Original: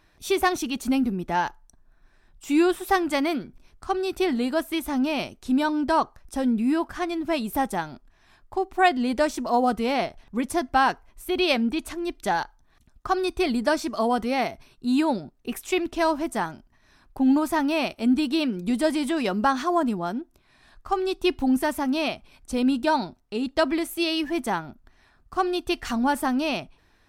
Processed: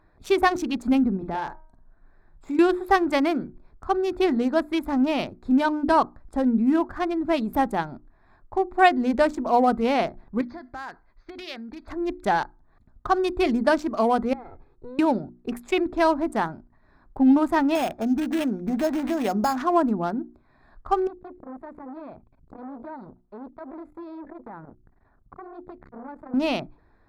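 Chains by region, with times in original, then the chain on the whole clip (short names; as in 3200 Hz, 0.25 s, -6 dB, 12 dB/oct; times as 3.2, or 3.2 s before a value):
1.16–2.59 de-hum 314.9 Hz, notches 7 + compressor 4:1, threshold -28 dBFS + doubler 49 ms -7 dB
10.41–11.88 compressor 12:1, threshold -28 dBFS + rippled Chebyshev low-pass 6400 Hz, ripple 9 dB + bell 3800 Hz +11.5 dB 1.1 oct
14.33–14.99 minimum comb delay 2.4 ms + compressor 12:1, threshold -36 dBFS + tape spacing loss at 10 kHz 25 dB
17.75–19.57 bell 740 Hz +10 dB 0.32 oct + compressor 3:1, threshold -23 dBFS + sample-rate reducer 5900 Hz
21.07–26.34 LPF 1200 Hz 6 dB/oct + compressor 5:1, threshold -36 dBFS + core saturation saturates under 1000 Hz
whole clip: Wiener smoothing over 15 samples; high shelf 4100 Hz -6.5 dB; notches 60/120/180/240/300/360 Hz; gain +3 dB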